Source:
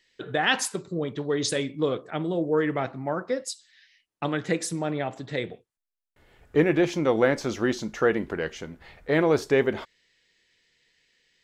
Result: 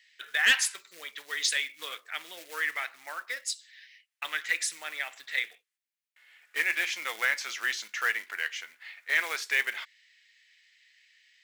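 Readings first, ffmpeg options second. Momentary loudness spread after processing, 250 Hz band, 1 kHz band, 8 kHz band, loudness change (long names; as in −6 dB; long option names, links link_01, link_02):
14 LU, −30.5 dB, −8.5 dB, +2.0 dB, −3.5 dB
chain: -af "acrusher=bits=6:mode=log:mix=0:aa=0.000001,highpass=frequency=2000:width_type=q:width=2,aeval=exprs='0.562*(cos(1*acos(clip(val(0)/0.562,-1,1)))-cos(1*PI/2))+0.1*(cos(5*acos(clip(val(0)/0.562,-1,1)))-cos(5*PI/2))':channel_layout=same,volume=-4.5dB"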